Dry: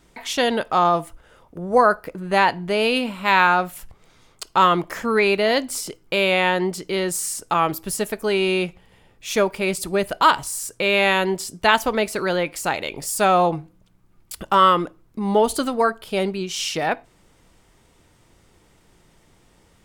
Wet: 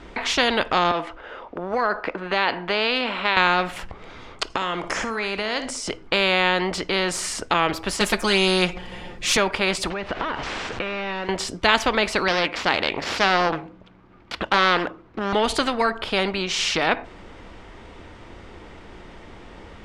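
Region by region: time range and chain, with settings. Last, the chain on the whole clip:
0:00.91–0:03.37: three-way crossover with the lows and the highs turned down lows −15 dB, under 270 Hz, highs −15 dB, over 5,800 Hz + downward compressor 2.5 to 1, threshold −19 dBFS
0:04.50–0:05.88: flat-topped bell 7,200 Hz +10.5 dB 1.1 octaves + downward compressor 5 to 1, threshold −29 dBFS + flutter between parallel walls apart 10.5 metres, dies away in 0.27 s
0:08.00–0:09.37: bass and treble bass +6 dB, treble +11 dB + comb filter 5.6 ms, depth 91%
0:09.90–0:11.29: linear delta modulator 64 kbit/s, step −33 dBFS + downward compressor, threshold −31 dBFS + high-frequency loss of the air 120 metres
0:12.28–0:15.33: running median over 5 samples + high-pass filter 160 Hz 6 dB per octave + highs frequency-modulated by the lows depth 0.46 ms
whole clip: low-pass filter 3,000 Hz 12 dB per octave; parametric band 140 Hz −13.5 dB 0.41 octaves; every bin compressed towards the loudest bin 2 to 1

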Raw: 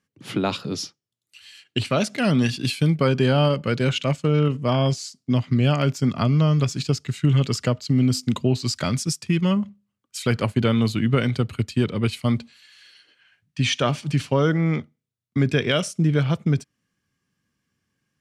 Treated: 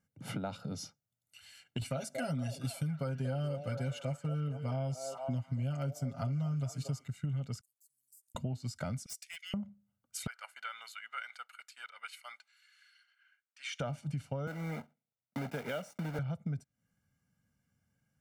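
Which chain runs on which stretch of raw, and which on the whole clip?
0:01.81–0:07.08: high-shelf EQ 5,100 Hz +10 dB + comb filter 7.4 ms, depth 88% + echo through a band-pass that steps 232 ms, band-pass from 540 Hz, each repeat 0.7 octaves, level −7 dB
0:07.61–0:08.35: gain on one half-wave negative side −3 dB + inverse Chebyshev high-pass filter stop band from 1,900 Hz, stop band 80 dB + downward compressor 2.5 to 1, threshold −58 dBFS
0:09.06–0:09.54: Butterworth high-pass 1,800 Hz 48 dB per octave + hard clipping −27 dBFS
0:10.27–0:13.80: high-pass filter 1,300 Hz 24 dB per octave + high-shelf EQ 2,400 Hz −9.5 dB
0:14.47–0:16.19: one scale factor per block 3 bits + three-way crossover with the lows and the highs turned down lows −17 dB, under 200 Hz, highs −13 dB, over 4,500 Hz
whole clip: parametric band 3,600 Hz −10.5 dB 2 octaves; comb filter 1.4 ms, depth 71%; downward compressor 4 to 1, threshold −34 dBFS; level −3 dB

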